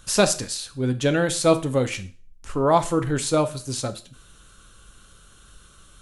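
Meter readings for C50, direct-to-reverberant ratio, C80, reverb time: 16.0 dB, 9.0 dB, 20.5 dB, 0.40 s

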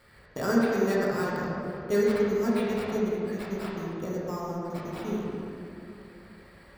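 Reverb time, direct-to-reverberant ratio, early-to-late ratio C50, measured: 2.9 s, −7.0 dB, −3.0 dB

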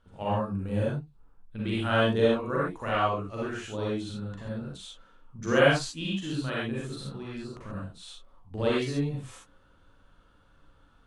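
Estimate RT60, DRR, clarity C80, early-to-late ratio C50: non-exponential decay, −7.5 dB, 1.5 dB, −4.0 dB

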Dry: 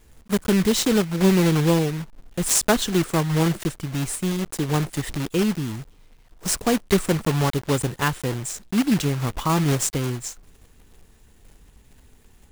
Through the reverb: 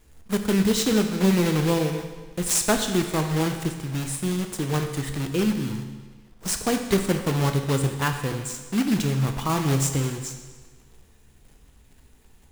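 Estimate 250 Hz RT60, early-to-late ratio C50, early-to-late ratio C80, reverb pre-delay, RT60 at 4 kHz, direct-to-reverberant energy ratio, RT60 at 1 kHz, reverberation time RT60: 1.4 s, 7.5 dB, 9.0 dB, 14 ms, 1.3 s, 5.5 dB, 1.4 s, 1.4 s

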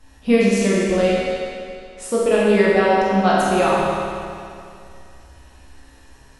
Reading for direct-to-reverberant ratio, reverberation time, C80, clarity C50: −7.5 dB, 2.4 s, −1.5 dB, −3.5 dB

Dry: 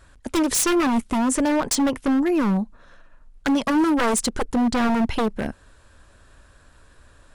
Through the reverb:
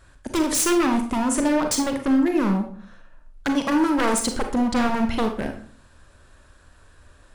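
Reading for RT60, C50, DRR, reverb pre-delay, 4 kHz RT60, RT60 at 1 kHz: 0.50 s, 8.0 dB, 5.0 dB, 32 ms, 0.35 s, 0.45 s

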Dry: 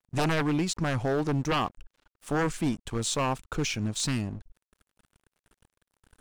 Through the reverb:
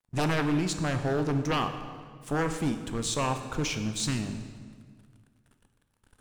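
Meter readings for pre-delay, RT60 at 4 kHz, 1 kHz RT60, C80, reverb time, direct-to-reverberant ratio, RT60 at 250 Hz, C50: 7 ms, 1.4 s, 1.7 s, 10.0 dB, 1.8 s, 7.0 dB, 2.2 s, 8.5 dB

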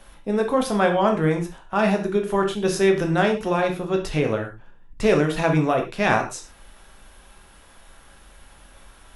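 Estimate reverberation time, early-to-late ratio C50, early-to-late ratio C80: non-exponential decay, 9.0 dB, 14.0 dB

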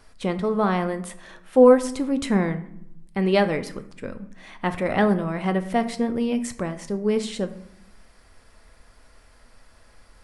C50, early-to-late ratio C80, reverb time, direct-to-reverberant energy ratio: 13.5 dB, 16.5 dB, 0.75 s, 9.0 dB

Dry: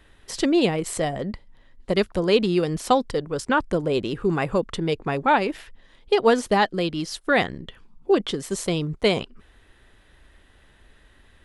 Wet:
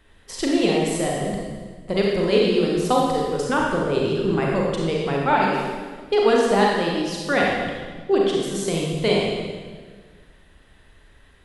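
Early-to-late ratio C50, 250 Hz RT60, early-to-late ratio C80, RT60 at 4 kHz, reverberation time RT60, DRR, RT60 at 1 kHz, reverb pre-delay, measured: −1.0 dB, 1.9 s, 1.5 dB, 1.4 s, 1.5 s, −3.0 dB, 1.4 s, 33 ms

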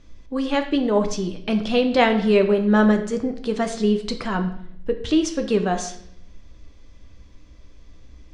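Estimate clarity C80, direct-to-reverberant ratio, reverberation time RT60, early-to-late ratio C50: 13.0 dB, 5.5 dB, 0.70 s, 10.5 dB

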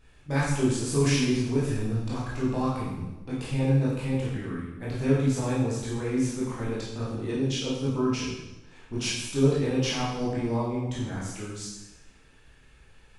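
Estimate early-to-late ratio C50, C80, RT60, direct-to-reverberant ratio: 0.5 dB, 3.5 dB, 1.1 s, −7.5 dB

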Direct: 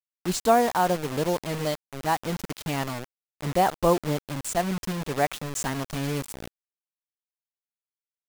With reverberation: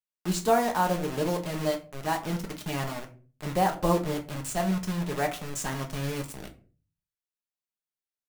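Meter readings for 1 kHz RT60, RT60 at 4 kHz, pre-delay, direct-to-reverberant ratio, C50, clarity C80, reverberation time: 0.35 s, 0.25 s, 5 ms, 2.0 dB, 13.5 dB, 18.5 dB, 0.40 s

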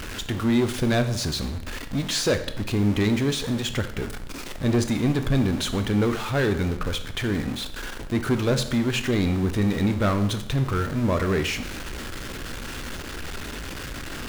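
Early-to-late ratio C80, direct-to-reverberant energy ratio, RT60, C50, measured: 13.5 dB, 8.0 dB, 0.75 s, 11.0 dB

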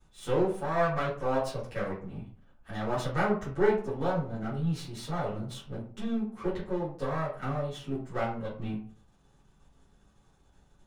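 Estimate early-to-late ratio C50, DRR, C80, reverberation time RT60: 6.0 dB, −12.5 dB, 10.5 dB, 0.50 s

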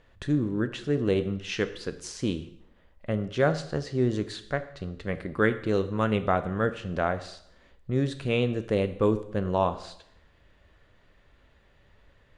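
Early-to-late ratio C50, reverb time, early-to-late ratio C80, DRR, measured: 14.0 dB, 0.70 s, 16.0 dB, 10.0 dB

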